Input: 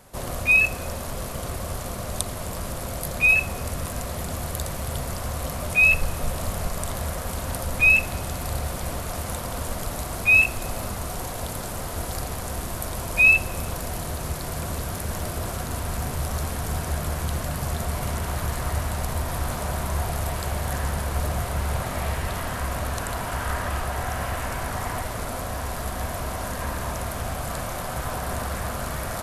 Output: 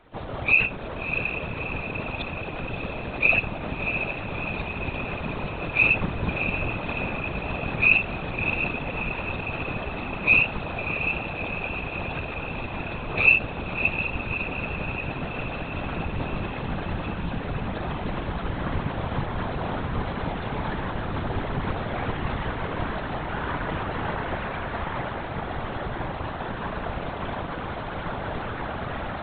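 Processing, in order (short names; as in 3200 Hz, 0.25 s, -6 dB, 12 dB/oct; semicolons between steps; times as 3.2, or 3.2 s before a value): LPC vocoder at 8 kHz whisper; diffused feedback echo 0.649 s, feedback 66%, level -7 dB; whisperiser; gain -2.5 dB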